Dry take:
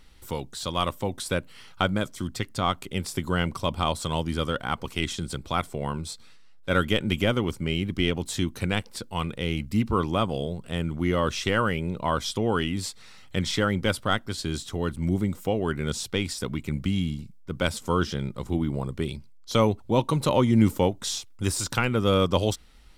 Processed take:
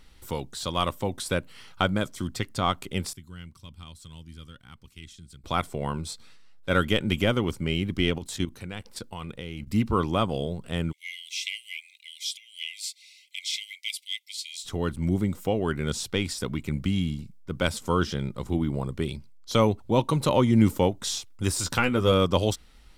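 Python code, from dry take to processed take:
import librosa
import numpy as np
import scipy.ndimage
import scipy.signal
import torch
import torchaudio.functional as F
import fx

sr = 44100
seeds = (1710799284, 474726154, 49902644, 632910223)

y = fx.tone_stack(x, sr, knobs='6-0-2', at=(3.13, 5.44))
y = fx.level_steps(y, sr, step_db=12, at=(8.18, 9.67))
y = fx.brickwall_highpass(y, sr, low_hz=2000.0, at=(10.91, 14.64), fade=0.02)
y = fx.doubler(y, sr, ms=12.0, db=-6.0, at=(21.63, 22.12))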